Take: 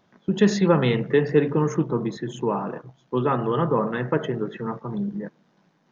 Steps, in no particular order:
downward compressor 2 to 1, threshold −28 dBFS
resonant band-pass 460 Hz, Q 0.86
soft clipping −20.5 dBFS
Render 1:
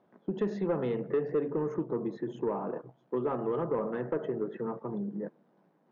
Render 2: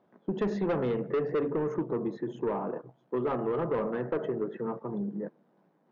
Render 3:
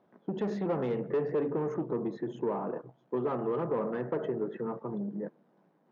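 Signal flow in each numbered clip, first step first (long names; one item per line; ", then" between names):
downward compressor, then resonant band-pass, then soft clipping
resonant band-pass, then soft clipping, then downward compressor
soft clipping, then downward compressor, then resonant band-pass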